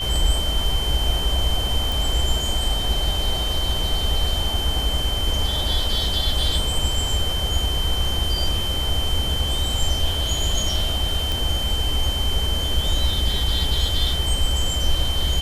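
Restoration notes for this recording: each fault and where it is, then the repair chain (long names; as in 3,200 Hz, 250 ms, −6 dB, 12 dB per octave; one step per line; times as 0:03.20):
whistle 3,100 Hz −25 dBFS
0:01.92: click
0:11.32: click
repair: click removal
notch filter 3,100 Hz, Q 30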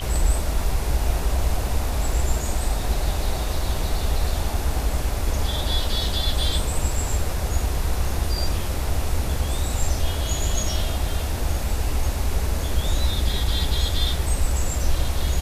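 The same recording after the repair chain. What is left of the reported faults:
none of them is left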